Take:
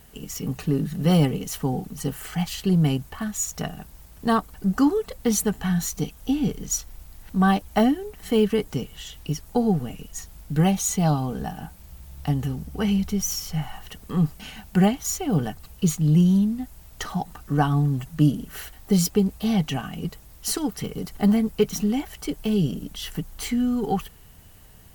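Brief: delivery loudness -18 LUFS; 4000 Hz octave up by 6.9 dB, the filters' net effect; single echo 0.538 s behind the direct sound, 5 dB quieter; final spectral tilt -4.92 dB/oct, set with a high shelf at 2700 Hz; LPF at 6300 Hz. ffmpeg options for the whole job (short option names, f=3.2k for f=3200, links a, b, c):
-af "lowpass=6.3k,highshelf=f=2.7k:g=3,equalizer=f=4k:t=o:g=8,aecho=1:1:538:0.562,volume=5dB"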